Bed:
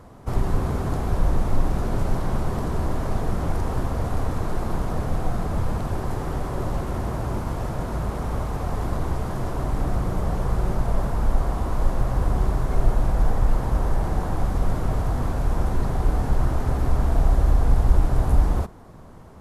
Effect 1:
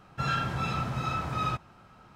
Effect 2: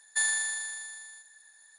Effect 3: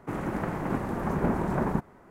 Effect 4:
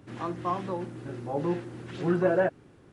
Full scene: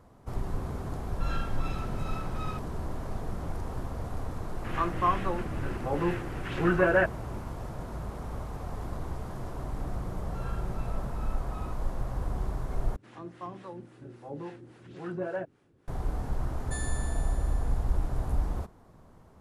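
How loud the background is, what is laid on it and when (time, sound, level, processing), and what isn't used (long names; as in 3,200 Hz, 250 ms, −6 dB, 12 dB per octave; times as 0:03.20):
bed −10.5 dB
0:01.02: mix in 1 −9.5 dB
0:04.57: mix in 4 −0.5 dB + flat-topped bell 1,800 Hz +8.5 dB
0:10.16: mix in 1 −13.5 dB + low-pass filter 1,200 Hz 6 dB per octave
0:12.96: overwrite with 4 −6.5 dB + two-band tremolo in antiphase 3.6 Hz, crossover 500 Hz
0:16.55: mix in 2 −13 dB
not used: 3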